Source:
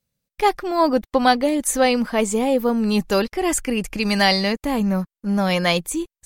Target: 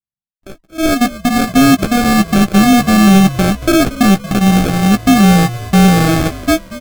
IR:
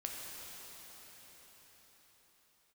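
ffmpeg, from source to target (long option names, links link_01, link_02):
-filter_complex "[0:a]agate=range=-14dB:threshold=-27dB:ratio=16:detection=peak,adynamicsmooth=sensitivity=4.5:basefreq=910,equalizer=frequency=7600:width=1.5:gain=5.5,alimiter=limit=-15.5dB:level=0:latency=1:release=426,dynaudnorm=framelen=550:gausssize=3:maxgain=12dB,aeval=exprs='0.631*(cos(1*acos(clip(val(0)/0.631,-1,1)))-cos(1*PI/2))+0.1*(cos(7*acos(clip(val(0)/0.631,-1,1)))-cos(7*PI/2))':channel_layout=same,lowshelf=frequency=390:width_type=q:width=3:gain=7.5,acrusher=samples=42:mix=1:aa=0.000001,asoftclip=type=tanh:threshold=-8dB,asplit=2[link_01][link_02];[link_02]adelay=14,volume=-9.5dB[link_03];[link_01][link_03]amix=inputs=2:normalize=0,asplit=5[link_04][link_05][link_06][link_07][link_08];[link_05]adelay=213,afreqshift=-70,volume=-16dB[link_09];[link_06]adelay=426,afreqshift=-140,volume=-22.7dB[link_10];[link_07]adelay=639,afreqshift=-210,volume=-29.5dB[link_11];[link_08]adelay=852,afreqshift=-280,volume=-36.2dB[link_12];[link_04][link_09][link_10][link_11][link_12]amix=inputs=5:normalize=0,asetrate=40517,aresample=44100,volume=1.5dB"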